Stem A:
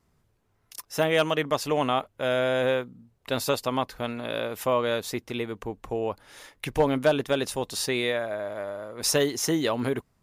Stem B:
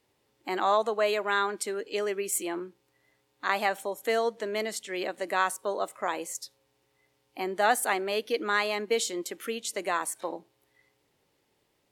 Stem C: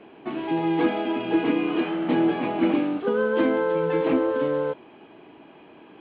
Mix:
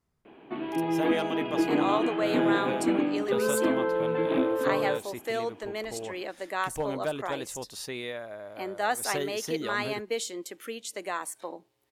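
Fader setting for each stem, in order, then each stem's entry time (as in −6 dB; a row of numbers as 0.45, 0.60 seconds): −9.5, −4.0, −4.0 decibels; 0.00, 1.20, 0.25 seconds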